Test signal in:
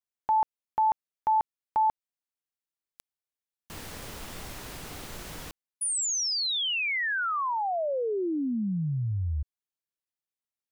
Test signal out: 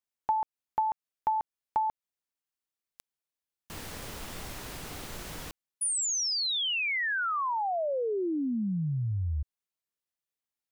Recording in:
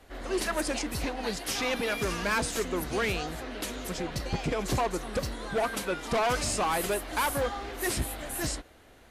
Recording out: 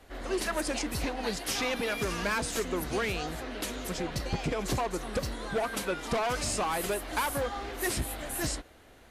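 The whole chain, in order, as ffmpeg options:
ffmpeg -i in.wav -af "acompressor=threshold=-28dB:ratio=6:attack=57:release=697:knee=1:detection=peak" out.wav

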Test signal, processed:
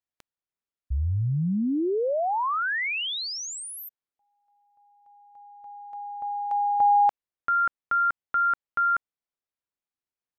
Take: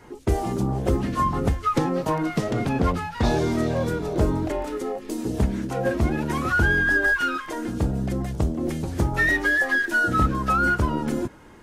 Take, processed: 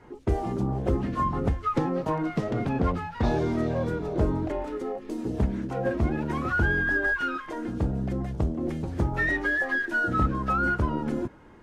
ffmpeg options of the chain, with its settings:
ffmpeg -i in.wav -af "lowpass=frequency=2100:poles=1,volume=-3dB" out.wav

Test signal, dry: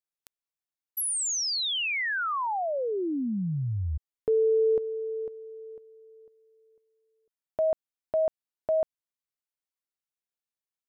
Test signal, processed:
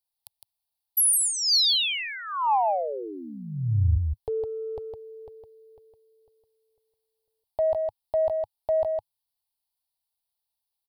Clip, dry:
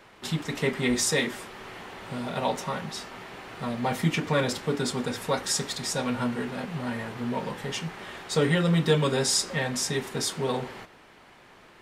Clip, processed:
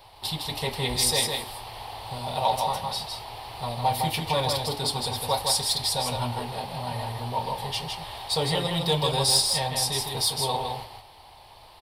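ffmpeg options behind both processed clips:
ffmpeg -i in.wav -filter_complex "[0:a]firequalizer=gain_entry='entry(100,0);entry(170,-18);entry(260,-20);entry(840,1);entry(1400,-20);entry(3100,-5);entry(4500,2);entry(6600,-17);entry(9500,1)':delay=0.05:min_phase=1,asoftclip=type=tanh:threshold=-19dB,asplit=2[link_01][link_02];[link_02]aecho=0:1:159:0.596[link_03];[link_01][link_03]amix=inputs=2:normalize=0,volume=8.5dB" out.wav

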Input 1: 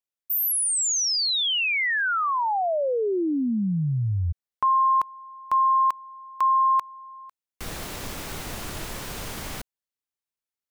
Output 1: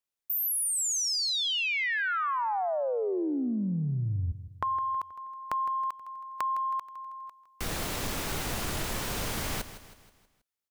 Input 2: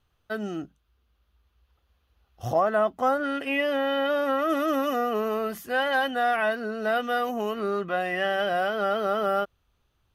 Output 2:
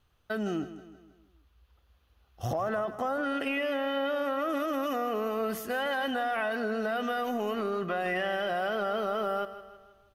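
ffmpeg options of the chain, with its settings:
ffmpeg -i in.wav -af "acompressor=threshold=-30dB:ratio=10:attack=4.9:release=36:knee=1:detection=peak,aecho=1:1:160|320|480|640|800:0.211|0.101|0.0487|0.0234|0.0112,volume=1.5dB" out.wav

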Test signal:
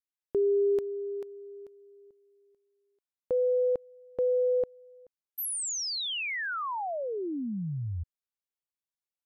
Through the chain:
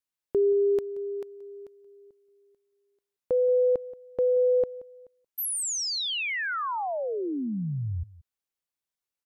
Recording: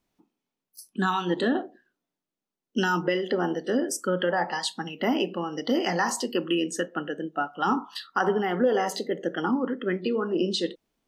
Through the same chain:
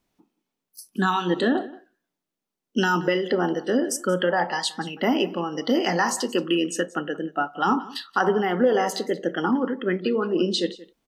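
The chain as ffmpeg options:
ffmpeg -i in.wav -af "aecho=1:1:178:0.106,volume=3dB" out.wav

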